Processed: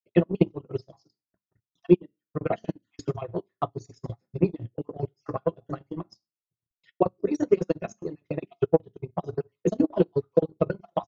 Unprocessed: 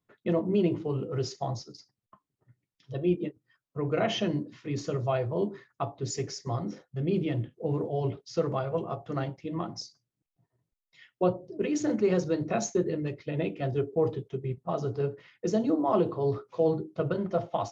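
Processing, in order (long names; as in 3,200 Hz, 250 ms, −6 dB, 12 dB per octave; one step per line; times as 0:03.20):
time-frequency cells dropped at random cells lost 41%
tempo change 1.6×
on a send at −8.5 dB: convolution reverb RT60 0.30 s, pre-delay 3 ms
on the sum: transient designer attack +11 dB, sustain −11 dB
expander for the loud parts 1.5 to 1, over −40 dBFS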